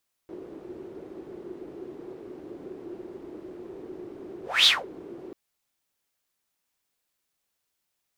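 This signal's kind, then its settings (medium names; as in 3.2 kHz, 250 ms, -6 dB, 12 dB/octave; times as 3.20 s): whoosh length 5.04 s, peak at 4.37 s, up 0.24 s, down 0.21 s, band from 360 Hz, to 3.8 kHz, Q 7.6, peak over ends 23.5 dB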